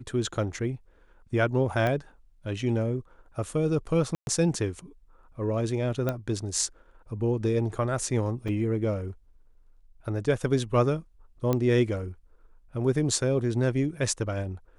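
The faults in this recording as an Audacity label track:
1.870000	1.870000	pop -16 dBFS
4.150000	4.270000	dropout 121 ms
6.090000	6.090000	pop -15 dBFS
8.480000	8.490000	dropout 5.2 ms
11.530000	11.530000	pop -13 dBFS

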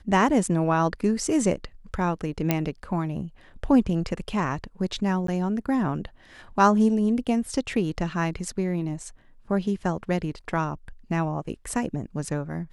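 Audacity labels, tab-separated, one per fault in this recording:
2.510000	2.510000	pop -7 dBFS
5.270000	5.280000	dropout 13 ms

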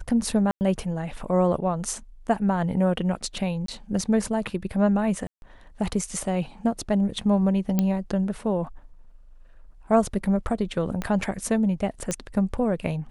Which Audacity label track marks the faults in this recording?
0.510000	0.610000	dropout 99 ms
3.660000	3.680000	dropout 23 ms
5.270000	5.420000	dropout 151 ms
7.790000	7.790000	pop -10 dBFS
11.020000	11.020000	pop -15 dBFS
12.110000	12.110000	pop -13 dBFS

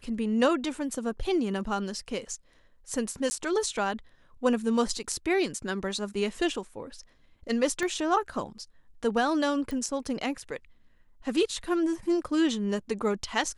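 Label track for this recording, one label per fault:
3.300000	3.310000	dropout 10 ms
7.830000	7.830000	pop -20 dBFS
9.710000	9.710000	pop

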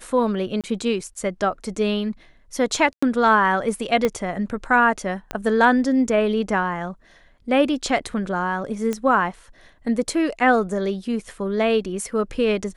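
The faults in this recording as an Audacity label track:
0.610000	0.640000	dropout 27 ms
2.930000	3.020000	dropout 95 ms
4.050000	4.050000	pop -8 dBFS
5.310000	5.310000	pop -12 dBFS
8.930000	8.930000	pop -13 dBFS

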